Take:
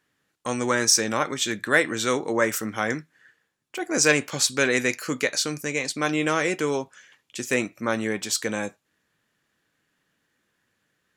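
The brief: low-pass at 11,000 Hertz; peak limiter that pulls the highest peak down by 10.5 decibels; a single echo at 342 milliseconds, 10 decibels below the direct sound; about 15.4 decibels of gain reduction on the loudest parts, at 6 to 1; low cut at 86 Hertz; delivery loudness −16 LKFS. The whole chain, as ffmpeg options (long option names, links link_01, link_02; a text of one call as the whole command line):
ffmpeg -i in.wav -af "highpass=86,lowpass=11000,acompressor=threshold=-31dB:ratio=6,alimiter=level_in=1.5dB:limit=-24dB:level=0:latency=1,volume=-1.5dB,aecho=1:1:342:0.316,volume=21dB" out.wav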